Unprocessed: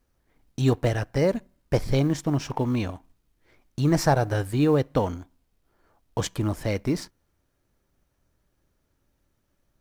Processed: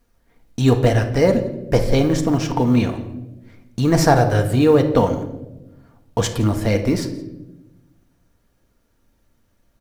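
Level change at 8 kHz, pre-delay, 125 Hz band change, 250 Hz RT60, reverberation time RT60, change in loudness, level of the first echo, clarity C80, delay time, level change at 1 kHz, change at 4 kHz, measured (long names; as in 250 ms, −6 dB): +7.0 dB, 4 ms, +6.5 dB, 1.5 s, 1.0 s, +7.0 dB, −21.5 dB, 12.5 dB, 170 ms, +7.5 dB, +7.0 dB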